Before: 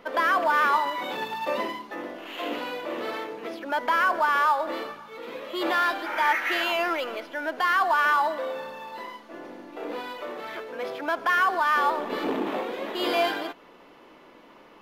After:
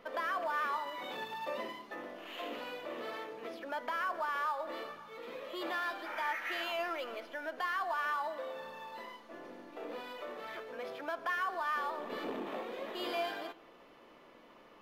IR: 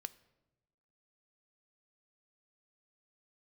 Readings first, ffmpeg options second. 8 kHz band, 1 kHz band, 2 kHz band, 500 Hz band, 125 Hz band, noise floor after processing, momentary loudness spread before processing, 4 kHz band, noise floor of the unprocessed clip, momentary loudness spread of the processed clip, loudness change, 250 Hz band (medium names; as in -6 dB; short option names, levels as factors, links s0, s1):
-12.0 dB, -12.5 dB, -12.5 dB, -10.5 dB, no reading, -59 dBFS, 16 LU, -11.0 dB, -52 dBFS, 12 LU, -12.5 dB, -12.5 dB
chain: -filter_complex "[0:a]acompressor=threshold=0.0158:ratio=1.5[s0];[1:a]atrim=start_sample=2205,asetrate=61740,aresample=44100[s1];[s0][s1]afir=irnorm=-1:irlink=0"